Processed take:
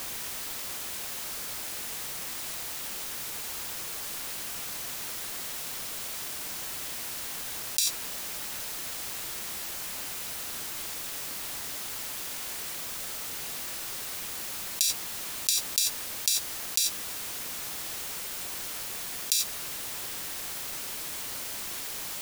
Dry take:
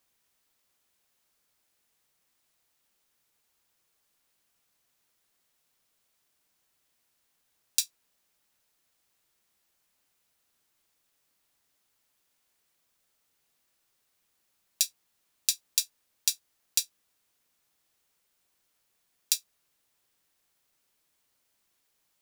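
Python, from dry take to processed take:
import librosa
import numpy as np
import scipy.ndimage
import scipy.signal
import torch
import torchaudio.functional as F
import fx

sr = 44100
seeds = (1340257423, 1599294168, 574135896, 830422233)

y = fx.env_flatten(x, sr, amount_pct=100)
y = y * 10.0 ** (-1.5 / 20.0)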